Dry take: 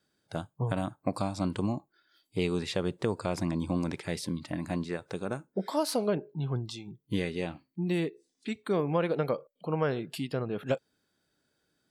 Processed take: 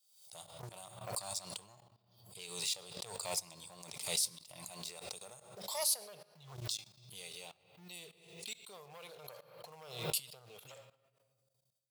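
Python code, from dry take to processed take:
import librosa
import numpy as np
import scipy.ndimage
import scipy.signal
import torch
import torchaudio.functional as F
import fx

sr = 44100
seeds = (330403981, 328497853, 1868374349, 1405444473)

y = fx.peak_eq(x, sr, hz=120.0, db=11.0, octaves=0.45)
y = fx.fixed_phaser(y, sr, hz=690.0, stages=4)
y = fx.leveller(y, sr, passes=2)
y = fx.room_shoebox(y, sr, seeds[0], volume_m3=1900.0, walls='mixed', distance_m=0.44)
y = fx.level_steps(y, sr, step_db=18)
y = np.diff(y, prepend=0.0)
y = fx.pre_swell(y, sr, db_per_s=72.0)
y = F.gain(torch.from_numpy(y), 6.0).numpy()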